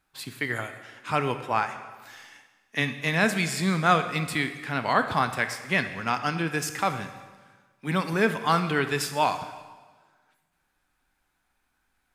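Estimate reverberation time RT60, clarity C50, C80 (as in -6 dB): 1.4 s, 10.0 dB, 11.5 dB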